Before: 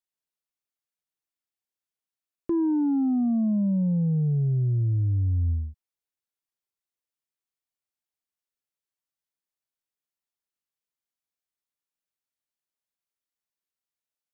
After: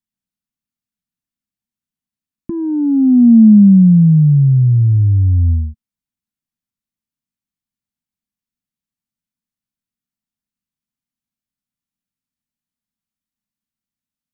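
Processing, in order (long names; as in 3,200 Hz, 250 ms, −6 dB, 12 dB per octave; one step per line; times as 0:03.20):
low shelf with overshoot 310 Hz +11 dB, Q 3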